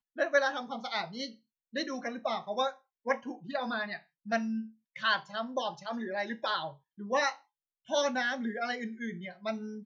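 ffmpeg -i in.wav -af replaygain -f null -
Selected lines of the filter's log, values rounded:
track_gain = +12.6 dB
track_peak = 0.148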